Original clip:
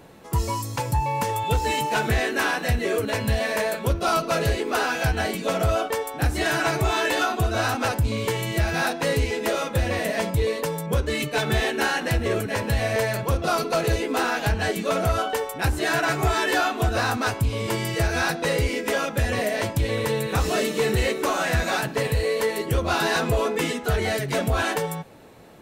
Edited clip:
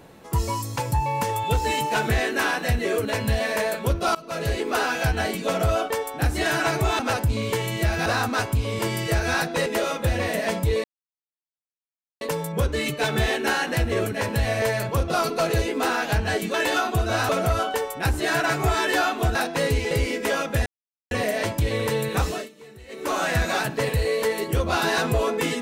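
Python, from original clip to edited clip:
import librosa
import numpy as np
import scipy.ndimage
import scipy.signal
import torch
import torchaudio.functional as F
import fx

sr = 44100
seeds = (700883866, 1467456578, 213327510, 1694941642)

y = fx.edit(x, sr, fx.fade_in_from(start_s=4.15, length_s=0.46, floor_db=-23.5),
    fx.move(start_s=6.99, length_s=0.75, to_s=14.88),
    fx.swap(start_s=8.81, length_s=0.56, other_s=16.94, other_length_s=1.6),
    fx.insert_silence(at_s=10.55, length_s=1.37),
    fx.insert_silence(at_s=19.29, length_s=0.45),
    fx.fade_down_up(start_s=20.38, length_s=0.97, db=-23.0, fade_s=0.29), tone=tone)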